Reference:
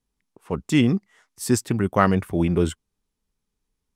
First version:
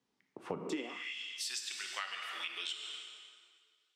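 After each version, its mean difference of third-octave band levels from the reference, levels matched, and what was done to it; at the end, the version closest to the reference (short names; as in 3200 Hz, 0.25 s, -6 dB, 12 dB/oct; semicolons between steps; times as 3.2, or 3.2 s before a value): 16.5 dB: three-band isolator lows -19 dB, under 210 Hz, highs -17 dB, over 6200 Hz; plate-style reverb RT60 2 s, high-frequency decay 0.8×, DRR 2.5 dB; high-pass sweep 110 Hz -> 3200 Hz, 0.54–1.15; compressor 8:1, threshold -39 dBFS, peak gain reduction 23 dB; gain +2.5 dB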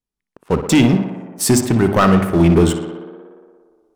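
6.5 dB: recorder AGC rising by 6.1 dB/s; notches 50/100/150/200/250 Hz; sample leveller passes 3; on a send: tape echo 60 ms, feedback 86%, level -8 dB, low-pass 3300 Hz; on the sum: gain -3 dB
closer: second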